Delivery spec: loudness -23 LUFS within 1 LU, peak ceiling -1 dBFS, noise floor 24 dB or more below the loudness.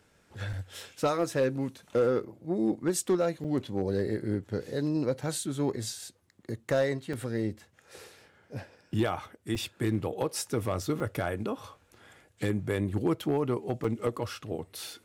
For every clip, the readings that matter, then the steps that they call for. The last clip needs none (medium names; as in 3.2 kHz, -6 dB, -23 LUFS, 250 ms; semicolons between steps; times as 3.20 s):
clipped samples 0.3%; clipping level -19.0 dBFS; dropouts 6; longest dropout 4.5 ms; loudness -31.5 LUFS; peak level -19.0 dBFS; loudness target -23.0 LUFS
-> clip repair -19 dBFS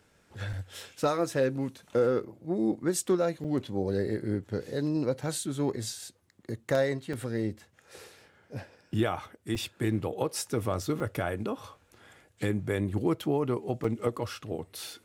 clipped samples 0.0%; dropouts 6; longest dropout 4.5 ms
-> interpolate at 0.53/3.44/7.13/9.55/11.00/13.84 s, 4.5 ms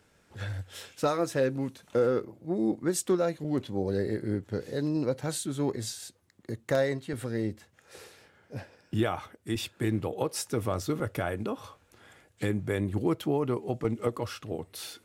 dropouts 0; loudness -31.0 LUFS; peak level -12.0 dBFS; loudness target -23.0 LUFS
-> trim +8 dB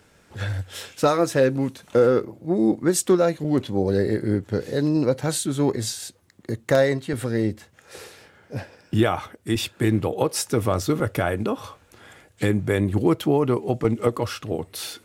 loudness -23.0 LUFS; peak level -4.0 dBFS; noise floor -58 dBFS